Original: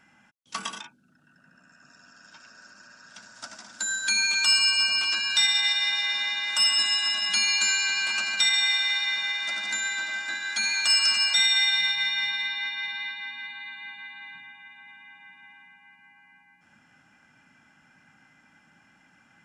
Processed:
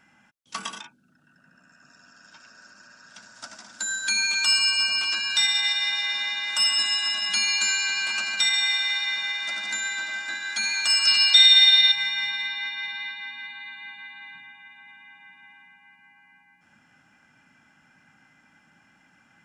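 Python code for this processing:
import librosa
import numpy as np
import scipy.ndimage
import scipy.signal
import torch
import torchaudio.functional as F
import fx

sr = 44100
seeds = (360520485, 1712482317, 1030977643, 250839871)

y = fx.curve_eq(x, sr, hz=(1500.0, 2500.0, 4000.0, 6500.0), db=(0, 3, 11, -2), at=(11.07, 11.92))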